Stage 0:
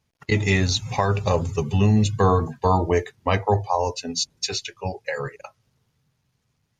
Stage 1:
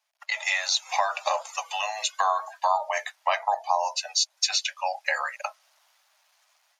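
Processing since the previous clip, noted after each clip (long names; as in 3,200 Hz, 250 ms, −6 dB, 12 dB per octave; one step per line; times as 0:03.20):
automatic gain control gain up to 12.5 dB
Butterworth high-pass 590 Hz 96 dB per octave
downward compressor 2 to 1, threshold −26 dBFS, peak gain reduction 9.5 dB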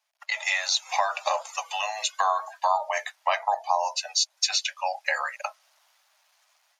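no processing that can be heard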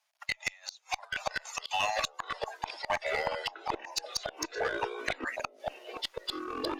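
gate with flip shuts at −16 dBFS, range −30 dB
asymmetric clip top −25 dBFS
delay with pitch and tempo change per echo 736 ms, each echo −5 semitones, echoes 3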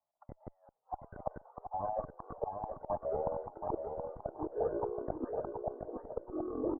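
Gaussian smoothing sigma 12 samples
on a send: repeating echo 725 ms, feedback 22%, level −6 dB
on the sum: level +3.5 dB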